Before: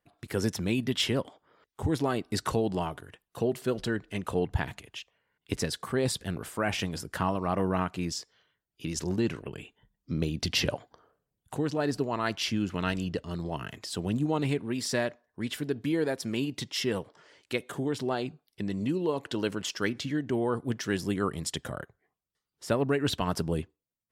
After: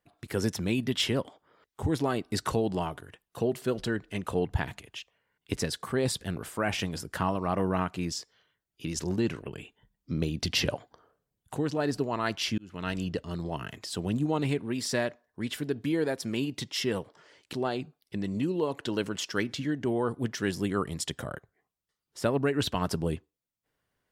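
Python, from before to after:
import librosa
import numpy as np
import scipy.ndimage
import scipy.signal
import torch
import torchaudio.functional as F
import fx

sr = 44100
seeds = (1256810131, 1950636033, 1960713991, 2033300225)

y = fx.edit(x, sr, fx.fade_in_span(start_s=12.58, length_s=0.43),
    fx.cut(start_s=17.53, length_s=0.46), tone=tone)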